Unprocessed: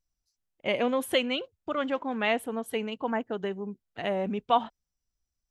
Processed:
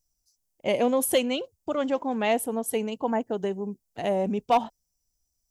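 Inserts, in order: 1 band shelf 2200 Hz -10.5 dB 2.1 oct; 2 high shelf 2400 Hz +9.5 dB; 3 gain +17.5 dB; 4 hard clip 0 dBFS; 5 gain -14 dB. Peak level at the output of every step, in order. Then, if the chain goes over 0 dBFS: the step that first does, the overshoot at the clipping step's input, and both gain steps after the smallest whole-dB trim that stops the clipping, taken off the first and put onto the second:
-14.0, -13.0, +4.5, 0.0, -14.0 dBFS; step 3, 4.5 dB; step 3 +12.5 dB, step 5 -9 dB

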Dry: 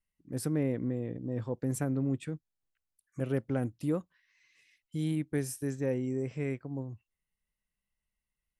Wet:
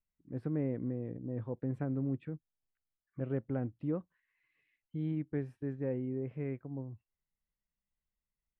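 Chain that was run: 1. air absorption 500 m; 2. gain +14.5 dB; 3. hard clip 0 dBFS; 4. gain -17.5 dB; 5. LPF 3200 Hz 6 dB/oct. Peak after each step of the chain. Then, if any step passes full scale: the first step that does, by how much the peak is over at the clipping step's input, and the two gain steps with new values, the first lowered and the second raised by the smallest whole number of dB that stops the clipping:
-19.5, -5.0, -5.0, -22.5, -22.5 dBFS; no overload

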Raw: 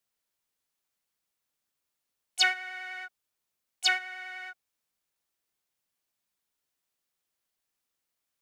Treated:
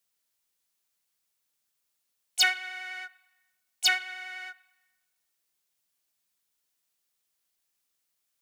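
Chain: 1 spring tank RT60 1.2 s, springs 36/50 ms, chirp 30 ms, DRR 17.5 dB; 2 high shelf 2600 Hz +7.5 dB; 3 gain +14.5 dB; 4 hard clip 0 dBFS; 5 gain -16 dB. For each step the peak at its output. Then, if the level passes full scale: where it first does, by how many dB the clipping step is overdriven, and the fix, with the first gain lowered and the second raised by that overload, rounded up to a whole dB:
-11.0, -5.5, +9.0, 0.0, -16.0 dBFS; step 3, 9.0 dB; step 3 +5.5 dB, step 5 -7 dB

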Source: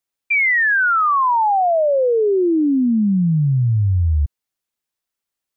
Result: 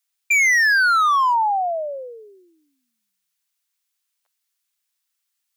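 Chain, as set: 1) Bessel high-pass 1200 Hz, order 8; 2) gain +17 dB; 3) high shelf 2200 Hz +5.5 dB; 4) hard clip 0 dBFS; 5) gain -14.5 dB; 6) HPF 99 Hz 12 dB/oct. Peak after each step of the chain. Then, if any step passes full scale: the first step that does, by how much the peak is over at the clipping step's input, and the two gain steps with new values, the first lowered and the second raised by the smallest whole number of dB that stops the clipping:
-13.5, +3.5, +6.5, 0.0, -14.5, -14.0 dBFS; step 2, 6.5 dB; step 2 +10 dB, step 5 -7.5 dB

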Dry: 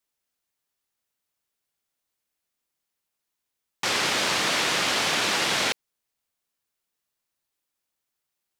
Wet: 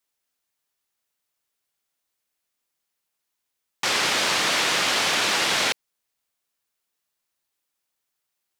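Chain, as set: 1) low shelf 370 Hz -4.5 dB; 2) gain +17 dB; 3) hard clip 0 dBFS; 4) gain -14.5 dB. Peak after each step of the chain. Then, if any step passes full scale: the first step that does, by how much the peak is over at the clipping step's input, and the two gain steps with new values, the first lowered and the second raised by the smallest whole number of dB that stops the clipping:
-11.0, +6.0, 0.0, -14.5 dBFS; step 2, 6.0 dB; step 2 +11 dB, step 4 -8.5 dB

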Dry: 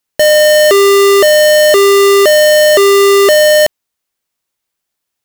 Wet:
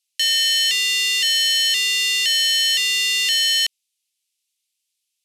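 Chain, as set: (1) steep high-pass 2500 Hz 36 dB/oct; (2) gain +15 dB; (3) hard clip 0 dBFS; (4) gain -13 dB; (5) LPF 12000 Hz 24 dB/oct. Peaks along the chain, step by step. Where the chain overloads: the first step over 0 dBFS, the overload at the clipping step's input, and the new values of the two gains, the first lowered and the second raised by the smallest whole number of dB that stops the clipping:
-6.0, +9.0, 0.0, -13.0, -10.5 dBFS; step 2, 9.0 dB; step 2 +6 dB, step 4 -4 dB

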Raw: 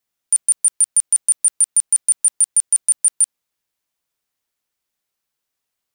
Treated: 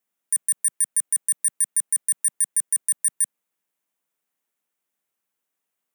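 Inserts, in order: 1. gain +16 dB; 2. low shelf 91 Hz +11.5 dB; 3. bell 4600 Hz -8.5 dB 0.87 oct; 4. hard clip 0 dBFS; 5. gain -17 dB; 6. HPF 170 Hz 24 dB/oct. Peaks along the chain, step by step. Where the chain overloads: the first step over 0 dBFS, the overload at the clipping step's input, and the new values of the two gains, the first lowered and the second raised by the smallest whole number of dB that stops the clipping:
+7.5, +7.5, +6.5, 0.0, -17.0, -16.5 dBFS; step 1, 6.5 dB; step 1 +9 dB, step 5 -10 dB

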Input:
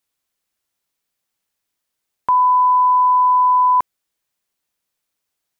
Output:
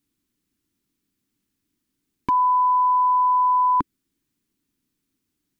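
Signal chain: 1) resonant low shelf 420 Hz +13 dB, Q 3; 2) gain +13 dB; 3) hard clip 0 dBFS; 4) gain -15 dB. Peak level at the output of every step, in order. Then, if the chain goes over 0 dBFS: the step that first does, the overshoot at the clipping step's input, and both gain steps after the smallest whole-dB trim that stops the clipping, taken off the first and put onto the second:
-7.5, +5.5, 0.0, -15.0 dBFS; step 2, 5.5 dB; step 2 +7 dB, step 4 -9 dB

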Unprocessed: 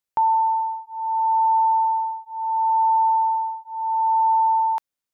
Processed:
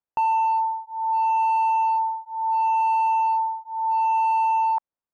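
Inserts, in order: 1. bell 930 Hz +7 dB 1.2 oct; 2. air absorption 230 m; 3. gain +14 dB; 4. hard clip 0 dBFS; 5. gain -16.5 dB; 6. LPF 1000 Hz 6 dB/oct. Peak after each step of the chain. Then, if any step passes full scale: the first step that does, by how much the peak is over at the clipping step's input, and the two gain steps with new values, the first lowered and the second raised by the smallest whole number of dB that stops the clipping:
-7.5, -8.5, +5.5, 0.0, -16.5, -17.5 dBFS; step 3, 5.5 dB; step 3 +8 dB, step 5 -10.5 dB

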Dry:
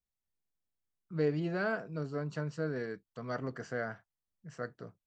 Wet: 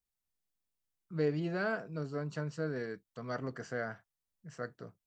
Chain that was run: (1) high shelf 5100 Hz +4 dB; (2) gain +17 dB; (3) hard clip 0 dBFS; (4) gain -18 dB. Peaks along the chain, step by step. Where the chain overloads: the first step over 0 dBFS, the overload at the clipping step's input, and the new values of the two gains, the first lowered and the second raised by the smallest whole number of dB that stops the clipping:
-19.5, -2.5, -2.5, -20.5 dBFS; no overload

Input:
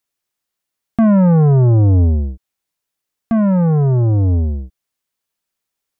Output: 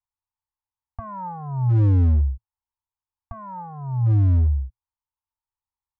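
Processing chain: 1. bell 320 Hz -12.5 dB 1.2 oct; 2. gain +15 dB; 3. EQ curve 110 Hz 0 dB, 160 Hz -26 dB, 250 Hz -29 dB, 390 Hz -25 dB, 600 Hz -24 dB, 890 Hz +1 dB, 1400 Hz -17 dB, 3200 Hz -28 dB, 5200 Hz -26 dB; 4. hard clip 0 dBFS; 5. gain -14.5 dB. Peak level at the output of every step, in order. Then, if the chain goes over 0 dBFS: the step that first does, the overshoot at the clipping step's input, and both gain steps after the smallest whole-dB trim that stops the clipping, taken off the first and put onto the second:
-9.0, +6.0, +7.0, 0.0, -14.5 dBFS; step 2, 7.0 dB; step 2 +8 dB, step 5 -7.5 dB

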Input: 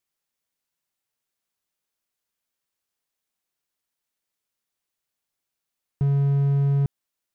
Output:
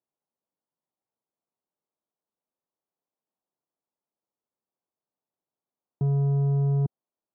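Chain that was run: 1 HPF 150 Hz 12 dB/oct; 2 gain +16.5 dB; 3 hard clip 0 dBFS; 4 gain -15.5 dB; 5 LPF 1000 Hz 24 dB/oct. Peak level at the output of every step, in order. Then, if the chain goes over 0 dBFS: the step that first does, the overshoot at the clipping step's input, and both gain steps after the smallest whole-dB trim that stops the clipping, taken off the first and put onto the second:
-20.5, -4.0, -4.0, -19.5, -19.5 dBFS; no overload

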